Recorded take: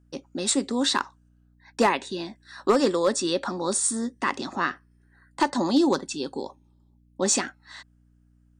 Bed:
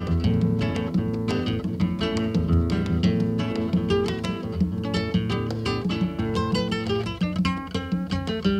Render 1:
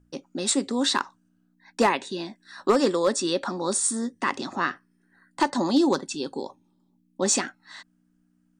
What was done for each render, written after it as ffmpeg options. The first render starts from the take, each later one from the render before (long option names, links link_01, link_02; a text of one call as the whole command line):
ffmpeg -i in.wav -af "bandreject=frequency=60:width_type=h:width=4,bandreject=frequency=120:width_type=h:width=4" out.wav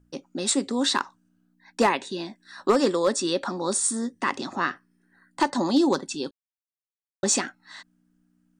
ffmpeg -i in.wav -filter_complex "[0:a]asplit=3[link_01][link_02][link_03];[link_01]atrim=end=6.31,asetpts=PTS-STARTPTS,afade=type=out:start_time=6.306:duration=0.004:curve=hsin[link_04];[link_02]atrim=start=6.31:end=7.23,asetpts=PTS-STARTPTS,volume=0[link_05];[link_03]atrim=start=7.23,asetpts=PTS-STARTPTS,afade=type=in:duration=0.004:curve=hsin[link_06];[link_04][link_05][link_06]concat=n=3:v=0:a=1" out.wav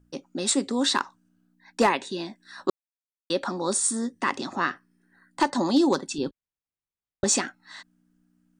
ffmpeg -i in.wav -filter_complex "[0:a]asettb=1/sr,asplit=3[link_01][link_02][link_03];[link_01]atrim=end=6.184[link_04];[link_02]atrim=start=6.18:end=7.24,asetpts=PTS-STARTPTS,afade=type=in:duration=0.004:curve=qsin,afade=type=out:start_time=1.056:duration=0.004:curve=qsin,aemphasis=mode=reproduction:type=bsi[link_05];[link_03]atrim=start=7.236[link_06];[link_04][link_05]acrossfade=duration=0.004:curve1=hsin:curve2=qsin[link_07];[link_07][link_06]acrossfade=duration=0.004:curve1=qsin:curve2=hsin,asplit=3[link_08][link_09][link_10];[link_08]atrim=end=2.7,asetpts=PTS-STARTPTS,afade=type=out:start_time=2.696:duration=0.004:curve=hsin[link_11];[link_09]atrim=start=2.7:end=3.3,asetpts=PTS-STARTPTS,volume=0[link_12];[link_10]atrim=start=3.3,asetpts=PTS-STARTPTS,afade=type=in:duration=0.004:curve=hsin[link_13];[link_11][link_12][link_13]concat=n=3:v=0:a=1" out.wav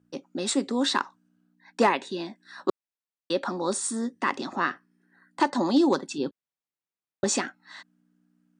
ffmpeg -i in.wav -af "highpass=150,highshelf=frequency=6100:gain=-9" out.wav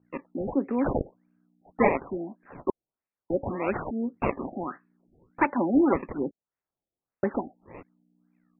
ffmpeg -i in.wav -af "acrusher=samples=17:mix=1:aa=0.000001:lfo=1:lforange=27.2:lforate=1.2,afftfilt=real='re*lt(b*sr/1024,780*pow(2800/780,0.5+0.5*sin(2*PI*1.7*pts/sr)))':imag='im*lt(b*sr/1024,780*pow(2800/780,0.5+0.5*sin(2*PI*1.7*pts/sr)))':win_size=1024:overlap=0.75" out.wav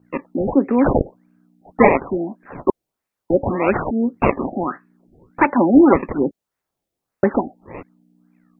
ffmpeg -i in.wav -af "volume=10.5dB,alimiter=limit=-1dB:level=0:latency=1" out.wav